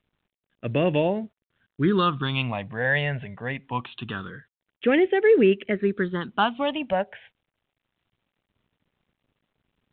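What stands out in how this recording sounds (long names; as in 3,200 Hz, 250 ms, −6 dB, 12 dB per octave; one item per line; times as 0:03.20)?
phaser sweep stages 6, 0.24 Hz, lowest notch 320–1,100 Hz
a quantiser's noise floor 12 bits, dither none
mu-law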